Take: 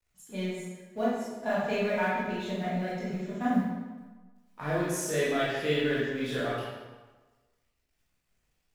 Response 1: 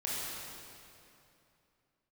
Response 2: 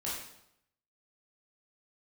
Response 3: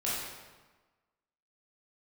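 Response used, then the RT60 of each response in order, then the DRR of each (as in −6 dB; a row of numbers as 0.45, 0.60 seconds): 3; 2.8, 0.75, 1.3 seconds; −7.0, −7.5, −8.5 decibels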